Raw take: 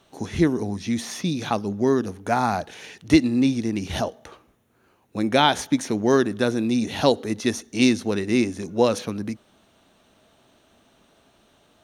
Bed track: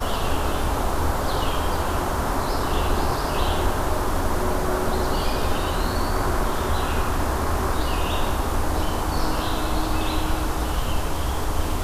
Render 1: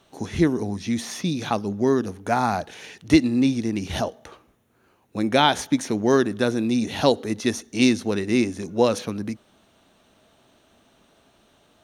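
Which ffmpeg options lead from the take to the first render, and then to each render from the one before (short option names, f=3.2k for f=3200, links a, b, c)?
-af anull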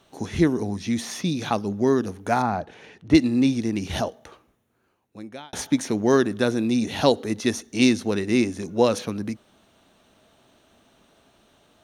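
-filter_complex "[0:a]asettb=1/sr,asplit=3[a][b][c];[a]atrim=end=2.424[d];[b]atrim=start=2.42:end=3.15,asetpts=PTS-STARTPTS,afade=t=in:d=0.004:c=qsin,afade=t=out:st=0.726:d=0.004:c=qsin,lowpass=f=1.2k:p=1[e];[c]atrim=start=3.146[f];[d][e]acrossfade=d=0.004:c1=hsin:c2=qsin[g];[g][f]acrossfade=d=0.004:c1=qsin:c2=hsin,asplit=2[h][i];[h]atrim=end=5.53,asetpts=PTS-STARTPTS,afade=t=out:st=3.94:d=1.59[j];[i]atrim=start=5.53,asetpts=PTS-STARTPTS,afade=t=in:d=0.004:c=hsin[k];[j][k]concat=n=2:v=0:a=1"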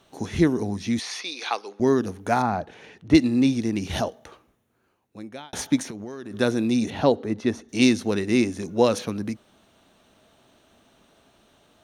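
-filter_complex "[0:a]asettb=1/sr,asplit=3[a][b][c];[a]atrim=end=0.994[d];[b]atrim=start=0.99:end=1.8,asetpts=PTS-STARTPTS,afade=t=in:d=0.004:c=qsin,afade=t=out:st=0.806:d=0.004:c=qsin,highpass=f=460:w=0.5412,highpass=f=460:w=1.3066,equalizer=f=600:t=q:w=4:g=-9,equalizer=f=2.3k:t=q:w=4:g=6,equalizer=f=4.4k:t=q:w=4:g=6,equalizer=f=7.5k:t=q:w=4:g=-8,lowpass=f=9.5k:w=0.5412,lowpass=f=9.5k:w=1.3066[e];[c]atrim=start=1.796[f];[d][e]acrossfade=d=0.004:c1=hsin:c2=qsin[g];[g][f]acrossfade=d=0.004:c1=qsin:c2=hsin,asettb=1/sr,asplit=3[h][i][j];[h]atrim=end=5.824[k];[i]atrim=start=5.82:end=6.34,asetpts=PTS-STARTPTS,afade=t=in:d=0.004:c=qsin,afade=t=out:st=0.516:d=0.004:c=qsin,acompressor=threshold=-31dB:ratio=20:attack=3.2:release=140:knee=1:detection=peak[l];[j]atrim=start=6.336[m];[k][l]acrossfade=d=0.004:c1=hsin:c2=qsin[n];[n][m]acrossfade=d=0.004:c1=qsin:c2=hsin,asettb=1/sr,asplit=3[o][p][q];[o]atrim=end=6.904[r];[p]atrim=start=6.9:end=7.69,asetpts=PTS-STARTPTS,afade=t=in:d=0.004:c=qsin,afade=t=out:st=0.786:d=0.004:c=qsin,lowpass=f=1.4k:p=1[s];[q]atrim=start=7.686[t];[r][s]acrossfade=d=0.004:c1=hsin:c2=qsin[u];[u][t]acrossfade=d=0.004:c1=qsin:c2=hsin"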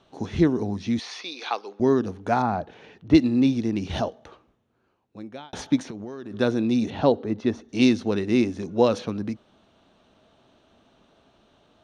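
-af "lowpass=4.3k,equalizer=f=2k:t=o:w=0.8:g=-4.5"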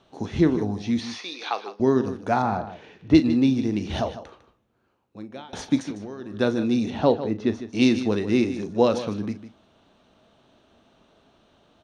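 -filter_complex "[0:a]asplit=2[a][b];[b]adelay=38,volume=-12.5dB[c];[a][c]amix=inputs=2:normalize=0,aecho=1:1:152:0.237"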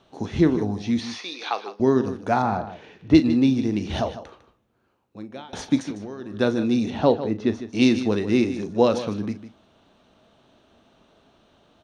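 -af "volume=1dB"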